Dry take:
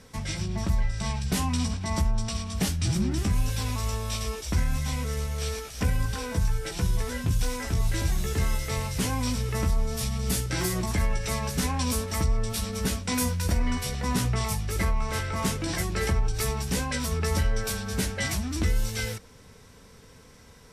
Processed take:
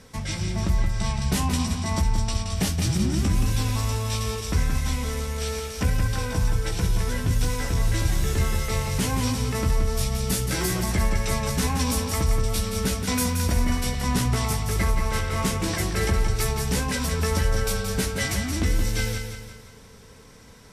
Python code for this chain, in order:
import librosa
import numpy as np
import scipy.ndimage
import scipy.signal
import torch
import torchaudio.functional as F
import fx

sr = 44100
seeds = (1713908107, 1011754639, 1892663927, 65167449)

y = fx.echo_feedback(x, sr, ms=174, feedback_pct=46, wet_db=-6.5)
y = y * librosa.db_to_amplitude(2.0)